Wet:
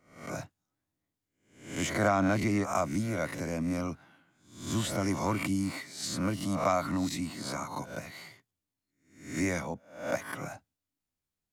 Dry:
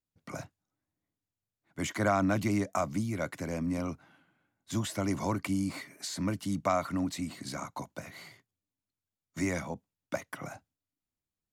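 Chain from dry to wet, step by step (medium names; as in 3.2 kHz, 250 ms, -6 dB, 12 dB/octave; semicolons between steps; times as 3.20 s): reverse spectral sustain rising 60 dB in 0.52 s; 2.07–2.64 s: treble shelf 11 kHz -11 dB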